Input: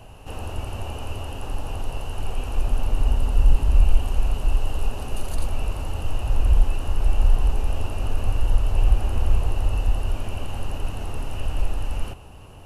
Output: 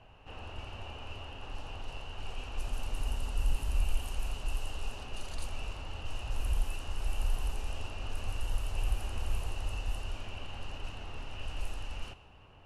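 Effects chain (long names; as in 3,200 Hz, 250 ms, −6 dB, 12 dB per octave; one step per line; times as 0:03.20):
low-pass that shuts in the quiet parts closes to 2,300 Hz, open at −11.5 dBFS
tilt shelving filter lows −6 dB, about 1,300 Hz
level −8 dB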